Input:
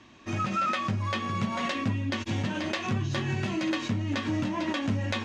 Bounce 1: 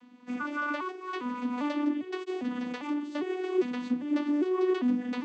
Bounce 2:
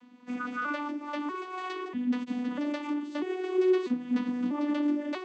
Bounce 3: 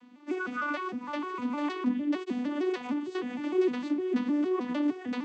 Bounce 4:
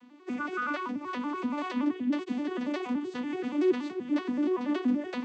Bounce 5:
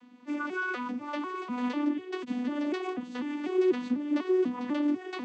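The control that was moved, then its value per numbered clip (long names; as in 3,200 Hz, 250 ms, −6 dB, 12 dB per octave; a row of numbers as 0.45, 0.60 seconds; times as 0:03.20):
vocoder with an arpeggio as carrier, a note every: 401, 643, 153, 95, 247 milliseconds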